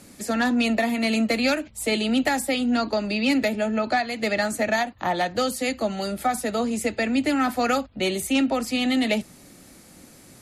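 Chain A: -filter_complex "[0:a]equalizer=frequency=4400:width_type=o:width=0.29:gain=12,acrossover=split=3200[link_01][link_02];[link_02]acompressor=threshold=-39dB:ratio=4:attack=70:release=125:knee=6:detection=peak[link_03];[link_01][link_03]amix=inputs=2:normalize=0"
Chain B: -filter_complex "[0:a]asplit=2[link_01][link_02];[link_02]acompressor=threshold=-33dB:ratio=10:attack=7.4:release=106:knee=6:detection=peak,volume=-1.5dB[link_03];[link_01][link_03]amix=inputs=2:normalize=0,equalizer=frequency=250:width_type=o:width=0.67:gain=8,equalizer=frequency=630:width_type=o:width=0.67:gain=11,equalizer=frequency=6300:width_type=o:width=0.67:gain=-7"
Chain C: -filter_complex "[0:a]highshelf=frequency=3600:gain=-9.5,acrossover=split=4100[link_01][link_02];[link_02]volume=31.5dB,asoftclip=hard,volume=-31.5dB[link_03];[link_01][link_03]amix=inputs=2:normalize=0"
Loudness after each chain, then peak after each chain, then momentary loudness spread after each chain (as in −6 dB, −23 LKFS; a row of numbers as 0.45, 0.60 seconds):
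−23.5, −15.5, −24.5 LKFS; −10.5, −2.5, −12.0 dBFS; 4, 5, 4 LU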